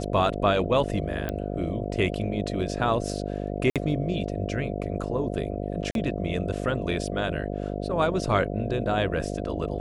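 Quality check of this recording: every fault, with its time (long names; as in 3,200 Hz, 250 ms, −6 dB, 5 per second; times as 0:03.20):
mains buzz 50 Hz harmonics 14 −31 dBFS
0:01.29: click −16 dBFS
0:03.70–0:03.76: drop-out 57 ms
0:05.91–0:05.95: drop-out 42 ms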